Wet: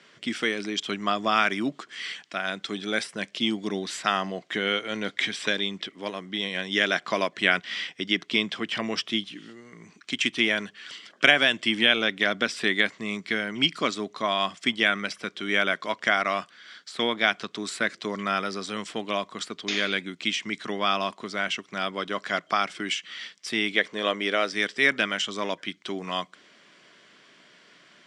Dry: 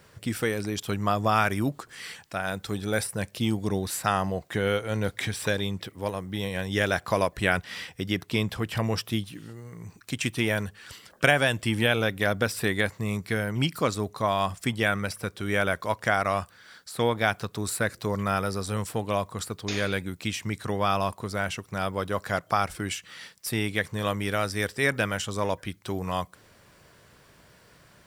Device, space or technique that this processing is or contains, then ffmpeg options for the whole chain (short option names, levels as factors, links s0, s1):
television speaker: -filter_complex "[0:a]highpass=f=210:w=0.5412,highpass=f=210:w=1.3066,equalizer=f=500:t=q:w=4:g=-7,equalizer=f=860:t=q:w=4:g=-7,equalizer=f=2100:t=q:w=4:g=5,equalizer=f=3200:t=q:w=4:g=8,lowpass=f=6900:w=0.5412,lowpass=f=6900:w=1.3066,asettb=1/sr,asplit=3[s0][s1][s2];[s0]atrim=end=23.764[s3];[s1]atrim=start=23.76:end=24.53,asetpts=PTS-STARTPTS,afade=t=in:d=0.004:c=qsin,afade=t=out:st=0.766:d=0.004:c=qsin,equalizer=f=125:t=o:w=1:g=-9,equalizer=f=500:t=o:w=1:g=7,equalizer=f=8000:t=o:w=1:g=-3[s4];[s2]atrim=start=24.526[s5];[s3][s4]acrossfade=d=0.004:c1=hsin:c2=qsin[s6];[s6][s5]acrossfade=d=0.004:c1=qsin:c2=hsin,volume=1.19"